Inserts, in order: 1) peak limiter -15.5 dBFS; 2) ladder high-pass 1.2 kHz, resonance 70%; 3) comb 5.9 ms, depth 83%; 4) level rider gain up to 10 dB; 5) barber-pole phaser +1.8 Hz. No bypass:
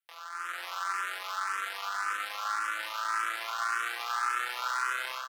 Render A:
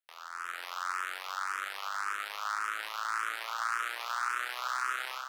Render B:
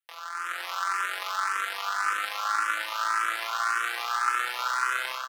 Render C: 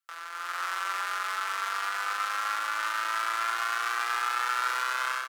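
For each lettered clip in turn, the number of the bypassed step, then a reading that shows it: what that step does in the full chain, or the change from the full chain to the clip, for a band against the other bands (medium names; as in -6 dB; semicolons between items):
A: 3, loudness change -2.0 LU; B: 1, mean gain reduction 4.0 dB; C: 5, loudness change +3.0 LU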